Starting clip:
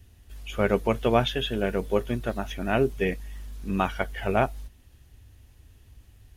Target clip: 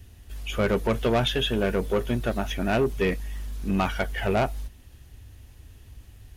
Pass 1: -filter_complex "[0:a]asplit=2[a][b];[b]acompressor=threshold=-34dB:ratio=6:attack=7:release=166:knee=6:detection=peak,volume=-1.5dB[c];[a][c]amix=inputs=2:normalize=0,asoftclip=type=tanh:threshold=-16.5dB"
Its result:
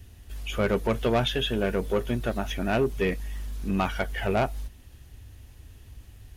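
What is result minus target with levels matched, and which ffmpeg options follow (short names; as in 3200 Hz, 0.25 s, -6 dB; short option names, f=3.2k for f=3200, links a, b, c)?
compressor: peak gain reduction +9.5 dB
-filter_complex "[0:a]asplit=2[a][b];[b]acompressor=threshold=-22.5dB:ratio=6:attack=7:release=166:knee=6:detection=peak,volume=-1.5dB[c];[a][c]amix=inputs=2:normalize=0,asoftclip=type=tanh:threshold=-16.5dB"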